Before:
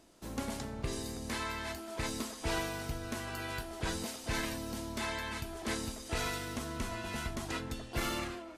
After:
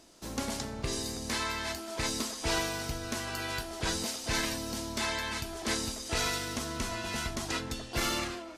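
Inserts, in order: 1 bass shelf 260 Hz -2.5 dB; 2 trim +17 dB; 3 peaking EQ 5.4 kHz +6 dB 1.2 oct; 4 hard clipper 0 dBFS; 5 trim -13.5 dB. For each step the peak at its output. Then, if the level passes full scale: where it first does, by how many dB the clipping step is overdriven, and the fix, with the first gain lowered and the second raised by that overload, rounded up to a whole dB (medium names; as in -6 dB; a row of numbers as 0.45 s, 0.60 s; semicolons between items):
-22.5 dBFS, -5.5 dBFS, -5.0 dBFS, -5.0 dBFS, -18.5 dBFS; nothing clips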